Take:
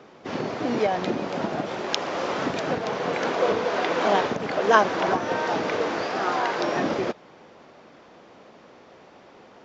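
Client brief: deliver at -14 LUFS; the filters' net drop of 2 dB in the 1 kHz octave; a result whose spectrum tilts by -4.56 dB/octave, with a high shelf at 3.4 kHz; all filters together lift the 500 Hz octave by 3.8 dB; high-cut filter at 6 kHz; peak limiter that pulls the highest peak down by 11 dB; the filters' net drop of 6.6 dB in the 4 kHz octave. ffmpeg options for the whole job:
-af "lowpass=6000,equalizer=f=500:t=o:g=6,equalizer=f=1000:t=o:g=-4.5,highshelf=f=3400:g=-6.5,equalizer=f=4000:t=o:g=-3.5,volume=3.98,alimiter=limit=0.668:level=0:latency=1"

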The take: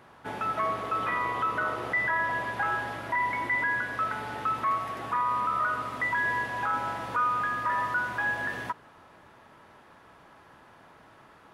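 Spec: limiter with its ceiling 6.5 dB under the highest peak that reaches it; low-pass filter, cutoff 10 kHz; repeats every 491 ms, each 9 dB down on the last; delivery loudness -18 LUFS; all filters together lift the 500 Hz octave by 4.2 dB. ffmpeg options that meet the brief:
-af "lowpass=10000,equalizer=f=500:t=o:g=5.5,alimiter=limit=0.0668:level=0:latency=1,aecho=1:1:491|982|1473|1964:0.355|0.124|0.0435|0.0152,volume=4.22"

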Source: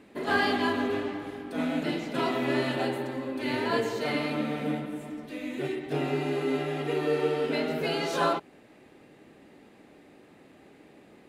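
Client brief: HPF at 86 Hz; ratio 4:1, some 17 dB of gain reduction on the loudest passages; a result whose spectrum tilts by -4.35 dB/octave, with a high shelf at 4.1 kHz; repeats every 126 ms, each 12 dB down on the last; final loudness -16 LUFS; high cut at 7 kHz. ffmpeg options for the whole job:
-af "highpass=86,lowpass=7000,highshelf=f=4100:g=-6,acompressor=threshold=0.00708:ratio=4,aecho=1:1:126|252|378:0.251|0.0628|0.0157,volume=25.1"

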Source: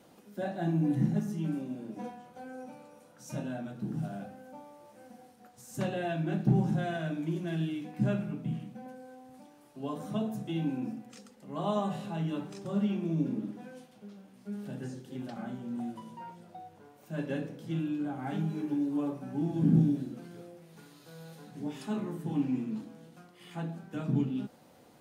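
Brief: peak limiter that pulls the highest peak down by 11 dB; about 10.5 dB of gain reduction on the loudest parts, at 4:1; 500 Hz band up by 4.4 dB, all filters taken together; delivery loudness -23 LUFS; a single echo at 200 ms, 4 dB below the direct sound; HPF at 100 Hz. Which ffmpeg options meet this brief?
-af "highpass=100,equalizer=f=500:t=o:g=6,acompressor=threshold=0.0251:ratio=4,alimiter=level_in=2.99:limit=0.0631:level=0:latency=1,volume=0.335,aecho=1:1:200:0.631,volume=7.94"

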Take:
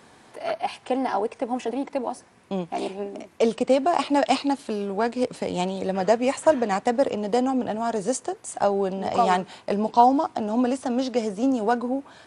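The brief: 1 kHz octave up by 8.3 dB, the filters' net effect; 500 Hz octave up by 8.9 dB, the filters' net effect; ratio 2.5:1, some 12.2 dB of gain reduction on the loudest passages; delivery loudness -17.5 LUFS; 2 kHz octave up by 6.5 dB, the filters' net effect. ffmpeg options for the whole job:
-af "equalizer=f=500:t=o:g=8.5,equalizer=f=1000:t=o:g=6.5,equalizer=f=2000:t=o:g=5.5,acompressor=threshold=0.0794:ratio=2.5,volume=2.24"

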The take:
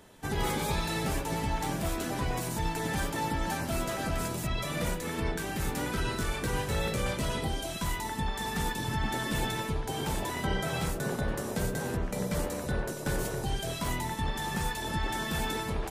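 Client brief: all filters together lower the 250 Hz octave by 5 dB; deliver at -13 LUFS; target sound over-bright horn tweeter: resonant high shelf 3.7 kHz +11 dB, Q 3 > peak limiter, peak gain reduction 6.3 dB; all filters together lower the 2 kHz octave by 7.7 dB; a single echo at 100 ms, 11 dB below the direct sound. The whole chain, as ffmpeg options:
-af "equalizer=f=250:t=o:g=-7.5,equalizer=f=2000:t=o:g=-5.5,highshelf=f=3700:t=q:w=3:g=11,aecho=1:1:100:0.282,volume=5.62,alimiter=limit=0.668:level=0:latency=1"

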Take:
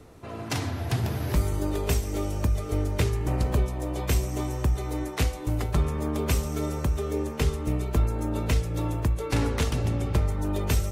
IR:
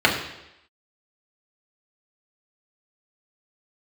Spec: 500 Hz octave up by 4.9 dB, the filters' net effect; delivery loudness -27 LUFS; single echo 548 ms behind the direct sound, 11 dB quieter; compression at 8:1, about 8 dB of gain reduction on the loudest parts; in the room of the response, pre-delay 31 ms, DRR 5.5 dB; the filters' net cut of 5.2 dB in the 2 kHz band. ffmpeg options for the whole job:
-filter_complex "[0:a]equalizer=f=500:t=o:g=6.5,equalizer=f=2000:t=o:g=-7,acompressor=threshold=0.0501:ratio=8,aecho=1:1:548:0.282,asplit=2[s0][s1];[1:a]atrim=start_sample=2205,adelay=31[s2];[s1][s2]afir=irnorm=-1:irlink=0,volume=0.0473[s3];[s0][s3]amix=inputs=2:normalize=0,volume=1.5"

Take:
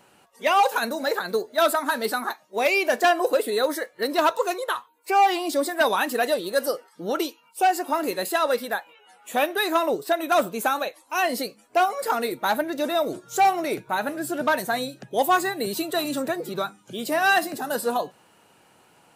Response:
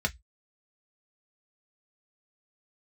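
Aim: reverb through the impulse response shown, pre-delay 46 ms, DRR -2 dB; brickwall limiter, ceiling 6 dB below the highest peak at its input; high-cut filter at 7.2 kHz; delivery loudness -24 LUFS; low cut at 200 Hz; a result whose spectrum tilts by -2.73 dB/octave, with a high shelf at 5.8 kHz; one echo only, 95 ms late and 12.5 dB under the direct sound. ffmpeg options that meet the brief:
-filter_complex "[0:a]highpass=200,lowpass=7200,highshelf=f=5800:g=5,alimiter=limit=0.178:level=0:latency=1,aecho=1:1:95:0.237,asplit=2[s0][s1];[1:a]atrim=start_sample=2205,adelay=46[s2];[s1][s2]afir=irnorm=-1:irlink=0,volume=0.531[s3];[s0][s3]amix=inputs=2:normalize=0,volume=0.794"

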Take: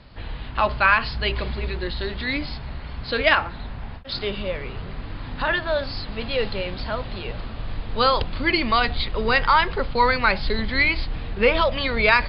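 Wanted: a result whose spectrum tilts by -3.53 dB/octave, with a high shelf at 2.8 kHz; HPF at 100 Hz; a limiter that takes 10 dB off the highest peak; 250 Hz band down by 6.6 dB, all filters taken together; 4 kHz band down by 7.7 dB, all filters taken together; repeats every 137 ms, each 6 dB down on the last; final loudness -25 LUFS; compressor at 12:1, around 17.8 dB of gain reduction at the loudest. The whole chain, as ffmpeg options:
-af "highpass=100,equalizer=f=250:t=o:g=-8.5,highshelf=f=2800:g=-7.5,equalizer=f=4000:t=o:g=-4,acompressor=threshold=0.0224:ratio=12,alimiter=level_in=1.88:limit=0.0631:level=0:latency=1,volume=0.531,aecho=1:1:137|274|411|548|685|822:0.501|0.251|0.125|0.0626|0.0313|0.0157,volume=4.73"

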